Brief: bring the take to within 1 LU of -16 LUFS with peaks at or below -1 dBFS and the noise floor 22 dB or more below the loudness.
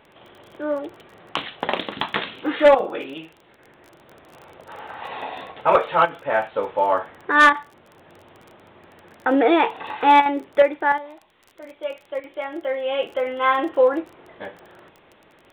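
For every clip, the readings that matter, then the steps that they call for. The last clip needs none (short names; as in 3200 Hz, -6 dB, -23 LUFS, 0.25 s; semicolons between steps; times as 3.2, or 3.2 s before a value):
ticks 24/s; loudness -21.0 LUFS; peak -7.0 dBFS; loudness target -16.0 LUFS
-> de-click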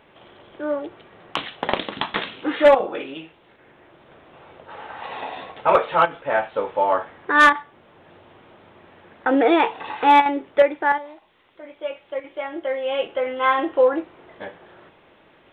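ticks 0.13/s; loudness -21.0 LUFS; peak -1.0 dBFS; loudness target -16.0 LUFS
-> gain +5 dB; limiter -1 dBFS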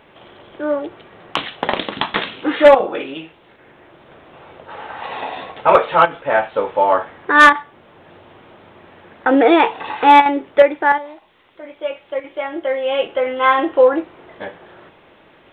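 loudness -16.0 LUFS; peak -1.0 dBFS; noise floor -50 dBFS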